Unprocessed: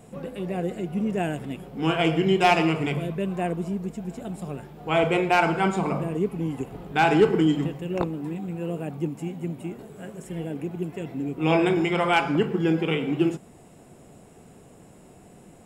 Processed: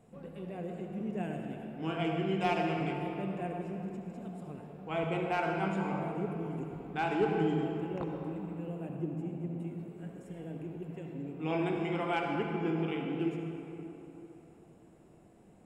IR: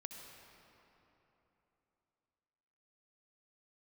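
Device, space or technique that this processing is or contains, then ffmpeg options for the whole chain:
swimming-pool hall: -filter_complex "[0:a]asettb=1/sr,asplit=3[a][b][c];[a]atrim=end=8.894[d];[b]atrim=start=8.89:end=9.6,asetpts=PTS-STARTPTS,afade=t=in:d=0.004:c=qsin,afade=t=out:st=0.706:d=0.004:c=qsin,tiltshelf=f=970:g=5[e];[c]atrim=start=9.596[f];[d][e]acrossfade=d=0.004:c1=hsin:c2=qsin[g];[g][f]acrossfade=d=0.004:c1=qsin:c2=hsin[h];[1:a]atrim=start_sample=2205[i];[h][i]afir=irnorm=-1:irlink=0,highshelf=f=3.8k:g=-7.5,volume=-6.5dB"

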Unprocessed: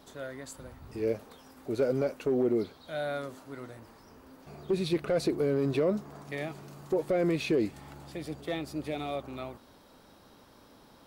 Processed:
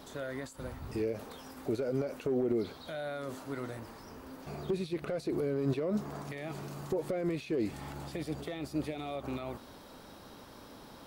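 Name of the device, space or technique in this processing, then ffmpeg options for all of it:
de-esser from a sidechain: -filter_complex "[0:a]asplit=2[a][b];[b]highpass=f=5.6k:p=1,apad=whole_len=488017[c];[a][c]sidechaincompress=threshold=-53dB:ratio=20:attack=0.96:release=92,volume=5.5dB"

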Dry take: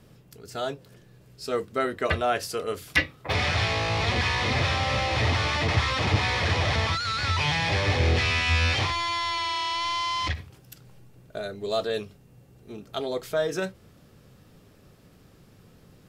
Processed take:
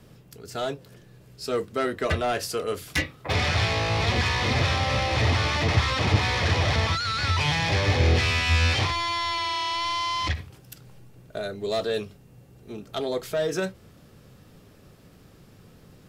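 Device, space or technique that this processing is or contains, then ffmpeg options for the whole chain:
one-band saturation: -filter_complex "[0:a]acrossover=split=420|4200[a][b][c];[b]asoftclip=type=tanh:threshold=-25.5dB[d];[a][d][c]amix=inputs=3:normalize=0,volume=2.5dB"

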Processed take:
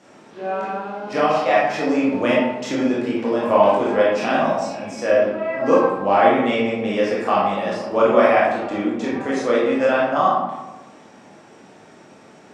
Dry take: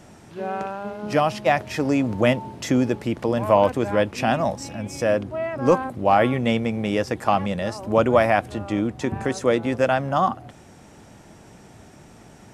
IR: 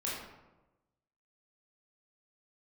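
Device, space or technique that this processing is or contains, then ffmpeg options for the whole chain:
supermarket ceiling speaker: -filter_complex "[0:a]highpass=250,lowpass=6.6k[a];[1:a]atrim=start_sample=2205[b];[a][b]afir=irnorm=-1:irlink=0"

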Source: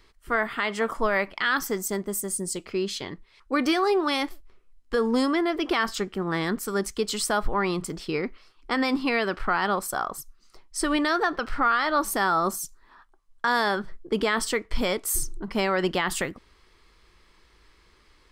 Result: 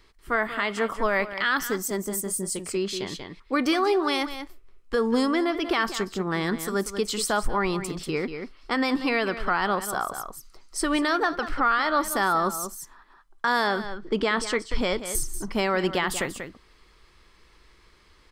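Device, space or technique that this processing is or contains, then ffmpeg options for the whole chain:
ducked delay: -filter_complex "[0:a]asettb=1/sr,asplit=3[a][b][c];[a]atrim=end=13.674[d];[b]atrim=start=13.67:end=15.15,asetpts=PTS-STARTPTS,afade=t=in:d=0.004:c=qsin,afade=t=out:st=1.476:d=0.004:c=qsin,lowpass=7k[e];[c]atrim=start=15.146[f];[d][e]acrossfade=d=0.004:c1=hsin:c2=qsin[g];[g][f]acrossfade=d=0.004:c1=qsin:c2=hsin,asplit=3[h][i][j];[i]adelay=188,volume=-3dB[k];[j]apad=whole_len=816178[l];[k][l]sidechaincompress=threshold=-30dB:ratio=8:attack=16:release=565[m];[h][m]amix=inputs=2:normalize=0"

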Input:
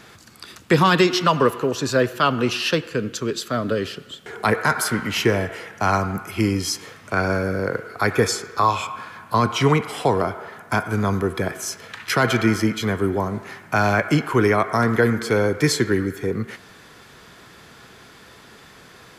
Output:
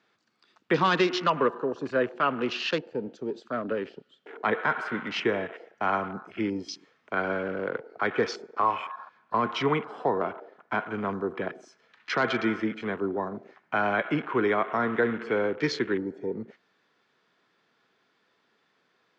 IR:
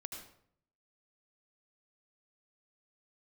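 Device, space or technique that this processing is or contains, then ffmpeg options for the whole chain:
over-cleaned archive recording: -af "highpass=190,lowpass=6.4k,afwtdn=0.0282,lowpass=5.5k,lowshelf=f=72:g=-11.5,volume=-6dB"

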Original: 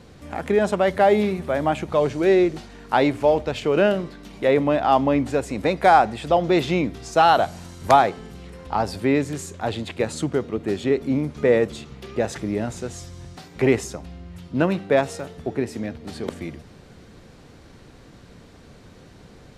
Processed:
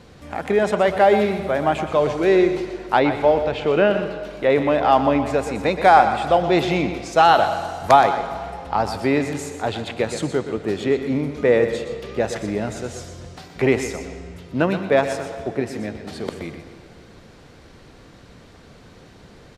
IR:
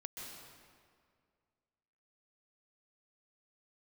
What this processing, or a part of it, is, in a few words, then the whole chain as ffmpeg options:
filtered reverb send: -filter_complex "[0:a]aecho=1:1:122:0.299,asettb=1/sr,asplit=3[a][b][c];[a]atrim=end=2.994[d];[b]atrim=start=2.99:end=4.5,asetpts=PTS-STARTPTS,afade=t=in:d=0.004:c=qsin,afade=t=out:st=1.506:d=0.004:c=qsin,acrossover=split=4000[e][f];[f]acompressor=threshold=-53dB:ratio=4:attack=1:release=60[g];[e][g]amix=inputs=2:normalize=0[h];[c]atrim=start=4.496[i];[d][h]acrossfade=d=0.004:c1=hsin:c2=qsin[j];[j][i]acrossfade=d=0.004:c1=qsin:c2=hsin,asplit=2[k][l];[l]highpass=370,lowpass=6.9k[m];[1:a]atrim=start_sample=2205[n];[m][n]afir=irnorm=-1:irlink=0,volume=-4.5dB[o];[k][o]amix=inputs=2:normalize=0"

